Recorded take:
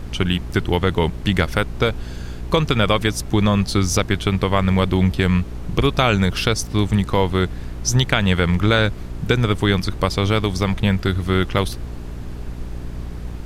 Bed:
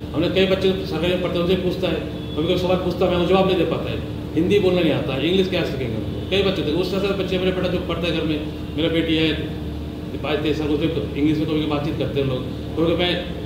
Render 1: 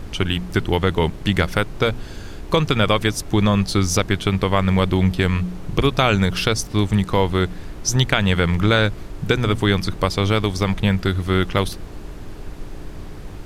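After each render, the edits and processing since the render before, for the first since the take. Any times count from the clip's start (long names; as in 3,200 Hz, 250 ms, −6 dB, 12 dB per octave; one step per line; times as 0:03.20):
hum removal 60 Hz, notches 4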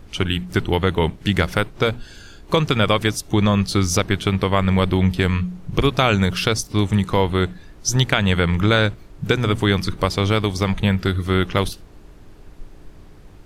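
noise reduction from a noise print 10 dB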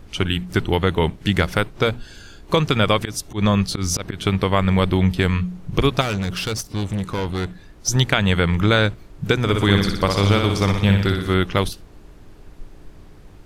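0:02.99–0:04.27: volume swells 112 ms
0:06.01–0:07.88: tube saturation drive 19 dB, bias 0.4
0:09.41–0:11.34: flutter between parallel walls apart 10.3 metres, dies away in 0.74 s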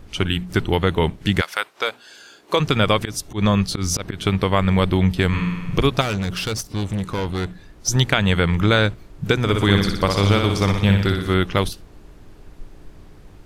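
0:01.40–0:02.59: high-pass filter 1,100 Hz → 300 Hz
0:05.28–0:05.80: flutter between parallel walls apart 8.8 metres, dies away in 1.3 s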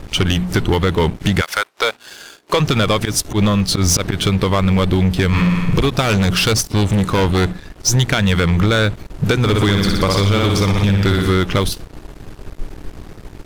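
downward compressor, threshold −19 dBFS, peak gain reduction 9 dB
leveller curve on the samples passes 3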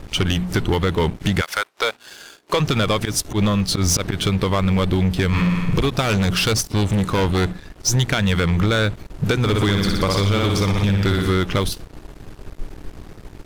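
level −3.5 dB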